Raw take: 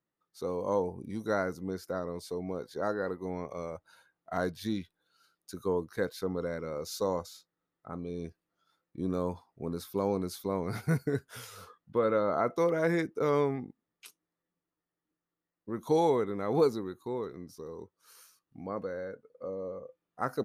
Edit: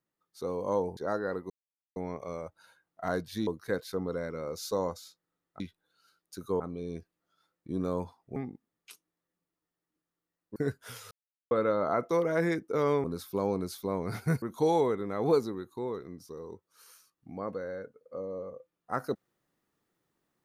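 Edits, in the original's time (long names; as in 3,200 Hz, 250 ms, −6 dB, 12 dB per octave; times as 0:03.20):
0:00.97–0:02.72: remove
0:03.25: splice in silence 0.46 s
0:04.76–0:05.76: move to 0:07.89
0:09.65–0:11.03: swap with 0:13.51–0:15.71
0:11.58–0:11.98: silence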